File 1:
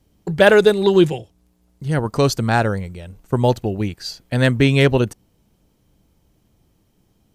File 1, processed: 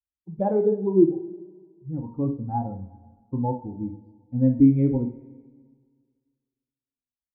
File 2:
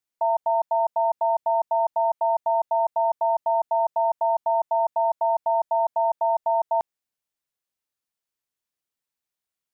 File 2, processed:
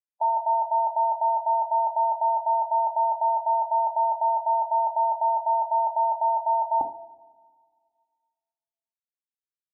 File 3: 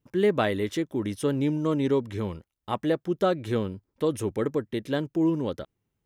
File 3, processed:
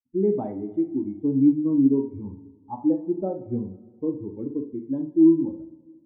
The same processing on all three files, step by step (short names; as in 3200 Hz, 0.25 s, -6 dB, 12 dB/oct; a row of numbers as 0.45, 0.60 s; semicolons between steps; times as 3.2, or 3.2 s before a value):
per-bin expansion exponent 2; vocal tract filter u; two-slope reverb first 0.37 s, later 1.8 s, from -18 dB, DRR 3 dB; match loudness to -24 LUFS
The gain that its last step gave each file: +5.5, +17.5, +12.0 dB